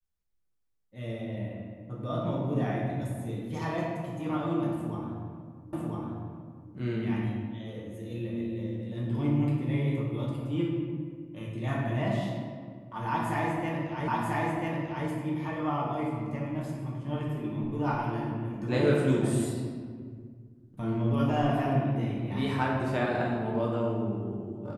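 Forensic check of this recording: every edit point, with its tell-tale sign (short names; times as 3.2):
5.73 repeat of the last 1 s
14.08 repeat of the last 0.99 s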